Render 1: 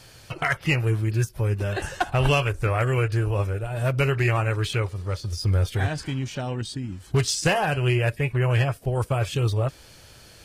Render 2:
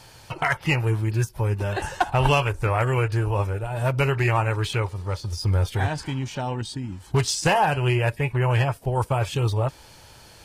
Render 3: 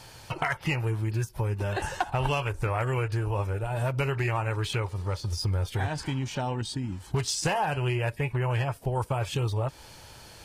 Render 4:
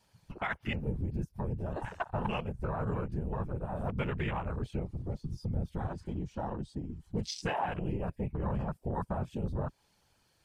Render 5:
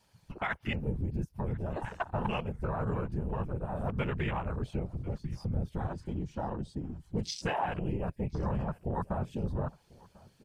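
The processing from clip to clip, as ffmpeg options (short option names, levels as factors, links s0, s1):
-af "equalizer=f=900:t=o:w=0.35:g=10.5"
-af "acompressor=threshold=0.0501:ratio=3"
-af "afftfilt=real='hypot(re,im)*cos(2*PI*random(0))':imag='hypot(re,im)*sin(2*PI*random(1))':win_size=512:overlap=0.75,afwtdn=0.0126"
-af "aecho=1:1:1045|2090:0.0668|0.012,volume=1.12"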